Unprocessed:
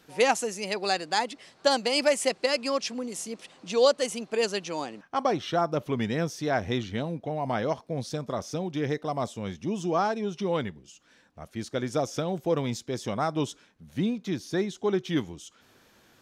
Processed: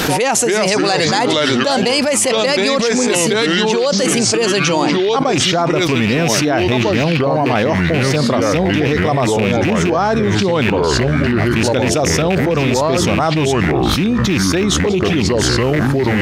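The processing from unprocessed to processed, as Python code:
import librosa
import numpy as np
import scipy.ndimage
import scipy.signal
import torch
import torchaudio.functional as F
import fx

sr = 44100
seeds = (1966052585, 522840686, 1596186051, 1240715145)

y = fx.rattle_buzz(x, sr, strikes_db=-32.0, level_db=-24.0)
y = fx.env_flanger(y, sr, rest_ms=10.0, full_db=-22.0, at=(14.77, 15.33))
y = fx.echo_pitch(y, sr, ms=233, semitones=-4, count=3, db_per_echo=-6.0)
y = fx.env_flatten(y, sr, amount_pct=100)
y = F.gain(torch.from_numpy(y), 2.5).numpy()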